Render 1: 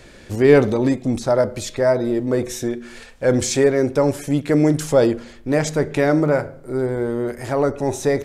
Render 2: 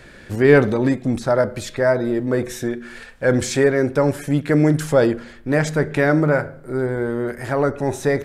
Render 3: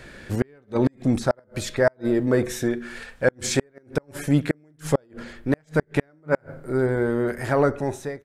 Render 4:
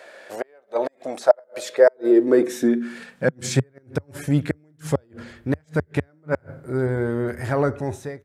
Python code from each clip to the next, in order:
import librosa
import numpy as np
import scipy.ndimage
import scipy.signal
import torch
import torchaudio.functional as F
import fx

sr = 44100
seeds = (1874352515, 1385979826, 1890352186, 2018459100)

y1 = fx.graphic_eq_15(x, sr, hz=(160, 1600, 6300), db=(4, 7, -4))
y1 = y1 * 10.0 ** (-1.0 / 20.0)
y2 = fx.fade_out_tail(y1, sr, length_s=0.65)
y2 = fx.gate_flip(y2, sr, shuts_db=-8.0, range_db=-40)
y3 = fx.filter_sweep_highpass(y2, sr, from_hz=620.0, to_hz=82.0, start_s=1.47, end_s=4.17, q=3.8)
y3 = y3 * 10.0 ** (-2.0 / 20.0)